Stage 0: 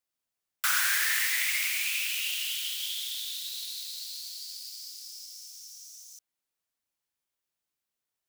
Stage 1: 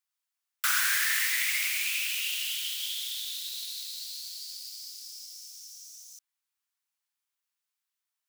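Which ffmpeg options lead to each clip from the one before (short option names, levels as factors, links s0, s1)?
-af "highpass=f=890:w=0.5412,highpass=f=890:w=1.3066"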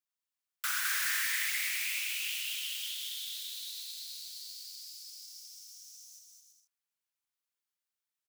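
-af "aecho=1:1:210|336|411.6|457|484.2:0.631|0.398|0.251|0.158|0.1,volume=0.447"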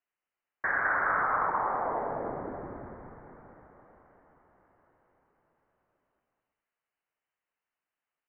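-af "lowpass=f=2600:t=q:w=0.5098,lowpass=f=2600:t=q:w=0.6013,lowpass=f=2600:t=q:w=0.9,lowpass=f=2600:t=q:w=2.563,afreqshift=-3100,volume=2.51"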